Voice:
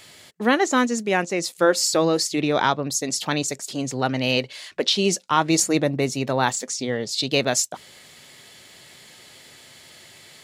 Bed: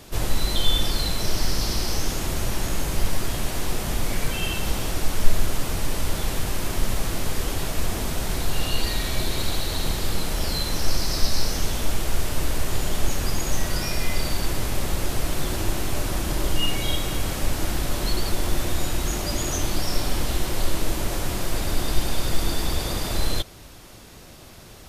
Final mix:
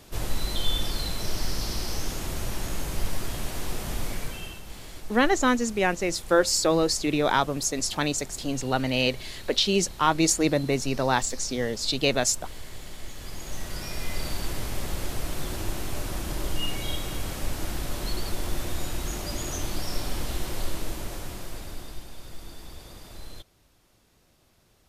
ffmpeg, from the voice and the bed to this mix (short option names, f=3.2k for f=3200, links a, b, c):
-filter_complex "[0:a]adelay=4700,volume=-2.5dB[a];[1:a]volume=5.5dB,afade=t=out:st=4.03:d=0.6:silence=0.266073,afade=t=in:st=13.12:d=1.16:silence=0.281838,afade=t=out:st=20.53:d=1.53:silence=0.237137[b];[a][b]amix=inputs=2:normalize=0"